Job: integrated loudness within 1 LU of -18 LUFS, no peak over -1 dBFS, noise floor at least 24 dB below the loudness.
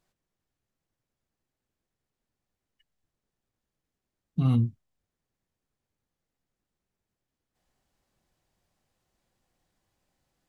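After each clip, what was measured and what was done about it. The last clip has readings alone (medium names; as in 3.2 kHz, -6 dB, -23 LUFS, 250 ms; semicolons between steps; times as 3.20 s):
loudness -27.5 LUFS; peak level -15.5 dBFS; loudness target -18.0 LUFS
-> trim +9.5 dB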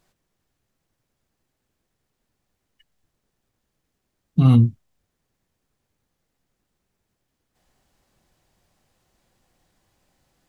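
loudness -18.0 LUFS; peak level -6.0 dBFS; noise floor -78 dBFS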